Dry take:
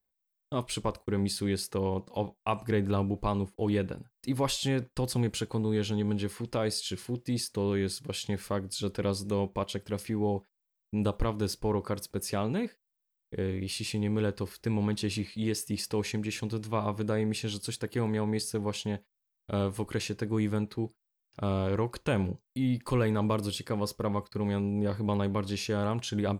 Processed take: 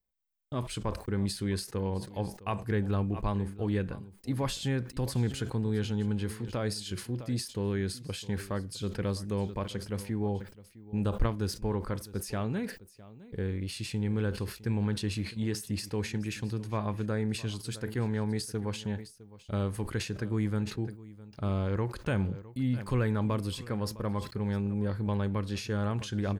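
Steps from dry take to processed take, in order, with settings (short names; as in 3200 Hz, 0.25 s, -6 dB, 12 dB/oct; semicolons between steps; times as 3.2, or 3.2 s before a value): low shelf 180 Hz +9 dB; echo 0.659 s -18.5 dB; dynamic EQ 1600 Hz, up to +6 dB, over -54 dBFS, Q 2.2; sustainer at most 130 dB/s; gain -5.5 dB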